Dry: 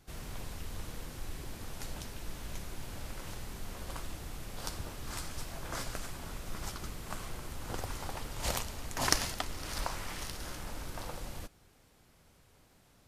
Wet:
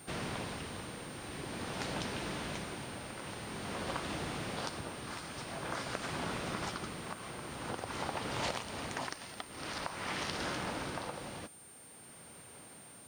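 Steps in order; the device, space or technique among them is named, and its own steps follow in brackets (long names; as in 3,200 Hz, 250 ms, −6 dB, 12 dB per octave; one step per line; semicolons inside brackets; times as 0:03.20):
medium wave at night (band-pass filter 150–4,200 Hz; downward compressor 10 to 1, threshold −44 dBFS, peak gain reduction 20.5 dB; amplitude tremolo 0.48 Hz, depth 54%; steady tone 9,000 Hz −65 dBFS; white noise bed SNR 24 dB)
level +11.5 dB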